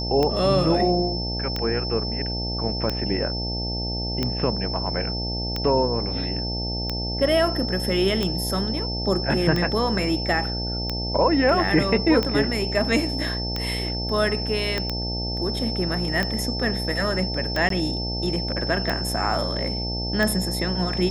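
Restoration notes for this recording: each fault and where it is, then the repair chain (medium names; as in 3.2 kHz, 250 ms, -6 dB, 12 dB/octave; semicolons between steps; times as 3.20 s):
buzz 60 Hz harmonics 15 -29 dBFS
tick 45 rpm -11 dBFS
whine 5.3 kHz -29 dBFS
14.78 s: pop -11 dBFS
17.69–17.70 s: dropout 13 ms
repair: de-click; de-hum 60 Hz, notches 15; band-stop 5.3 kHz, Q 30; interpolate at 17.69 s, 13 ms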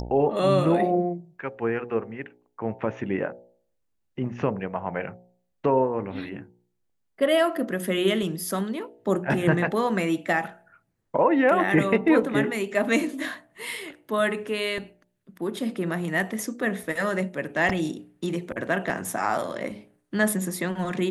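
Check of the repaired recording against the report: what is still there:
14.78 s: pop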